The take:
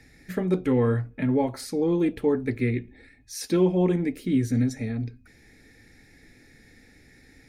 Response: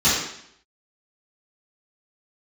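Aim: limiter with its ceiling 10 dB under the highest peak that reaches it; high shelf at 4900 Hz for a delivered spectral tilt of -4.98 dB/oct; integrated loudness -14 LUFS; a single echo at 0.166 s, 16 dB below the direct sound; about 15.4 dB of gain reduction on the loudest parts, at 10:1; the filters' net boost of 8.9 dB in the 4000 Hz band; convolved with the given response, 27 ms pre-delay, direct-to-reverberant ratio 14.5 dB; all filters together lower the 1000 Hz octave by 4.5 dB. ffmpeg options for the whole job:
-filter_complex "[0:a]equalizer=f=1k:t=o:g=-6.5,equalizer=f=4k:t=o:g=9,highshelf=f=4.9k:g=5,acompressor=threshold=-34dB:ratio=10,alimiter=level_in=9.5dB:limit=-24dB:level=0:latency=1,volume=-9.5dB,aecho=1:1:166:0.158,asplit=2[a][b];[1:a]atrim=start_sample=2205,adelay=27[c];[b][c]afir=irnorm=-1:irlink=0,volume=-33.5dB[d];[a][d]amix=inputs=2:normalize=0,volume=29dB"

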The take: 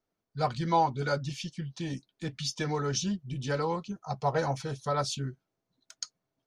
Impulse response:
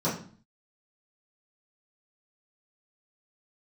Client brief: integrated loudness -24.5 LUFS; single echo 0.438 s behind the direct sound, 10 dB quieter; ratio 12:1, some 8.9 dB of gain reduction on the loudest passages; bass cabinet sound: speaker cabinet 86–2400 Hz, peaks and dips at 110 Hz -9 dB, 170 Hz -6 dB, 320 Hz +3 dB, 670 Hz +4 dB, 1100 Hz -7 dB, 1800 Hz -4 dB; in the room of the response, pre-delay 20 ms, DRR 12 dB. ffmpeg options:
-filter_complex "[0:a]acompressor=threshold=-29dB:ratio=12,aecho=1:1:438:0.316,asplit=2[a][b];[1:a]atrim=start_sample=2205,adelay=20[c];[b][c]afir=irnorm=-1:irlink=0,volume=-22.5dB[d];[a][d]amix=inputs=2:normalize=0,highpass=f=86:w=0.5412,highpass=f=86:w=1.3066,equalizer=f=110:t=q:w=4:g=-9,equalizer=f=170:t=q:w=4:g=-6,equalizer=f=320:t=q:w=4:g=3,equalizer=f=670:t=q:w=4:g=4,equalizer=f=1.1k:t=q:w=4:g=-7,equalizer=f=1.8k:t=q:w=4:g=-4,lowpass=f=2.4k:w=0.5412,lowpass=f=2.4k:w=1.3066,volume=11.5dB"

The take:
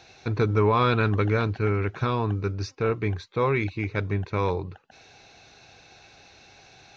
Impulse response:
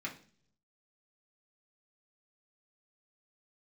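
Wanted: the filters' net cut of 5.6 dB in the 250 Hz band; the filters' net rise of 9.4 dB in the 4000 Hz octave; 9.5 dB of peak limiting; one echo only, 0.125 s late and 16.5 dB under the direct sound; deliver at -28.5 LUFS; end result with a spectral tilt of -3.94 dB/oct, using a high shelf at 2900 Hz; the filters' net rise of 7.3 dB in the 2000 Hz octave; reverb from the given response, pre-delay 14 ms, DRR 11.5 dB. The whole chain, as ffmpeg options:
-filter_complex "[0:a]equalizer=f=250:t=o:g=-8,equalizer=f=2k:t=o:g=6,highshelf=f=2.9k:g=4.5,equalizer=f=4k:t=o:g=6,alimiter=limit=-18.5dB:level=0:latency=1,aecho=1:1:125:0.15,asplit=2[a][b];[1:a]atrim=start_sample=2205,adelay=14[c];[b][c]afir=irnorm=-1:irlink=0,volume=-13dB[d];[a][d]amix=inputs=2:normalize=0,volume=-0.5dB"

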